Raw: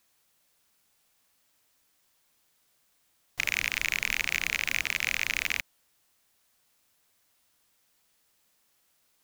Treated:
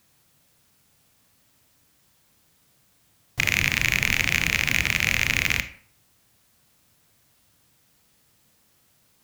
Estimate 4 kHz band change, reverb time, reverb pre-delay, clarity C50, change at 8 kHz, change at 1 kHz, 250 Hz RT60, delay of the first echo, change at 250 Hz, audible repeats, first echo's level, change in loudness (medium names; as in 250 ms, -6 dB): +6.5 dB, 0.50 s, 22 ms, 14.0 dB, +6.0 dB, +7.5 dB, 0.50 s, no echo, +15.5 dB, no echo, no echo, +6.5 dB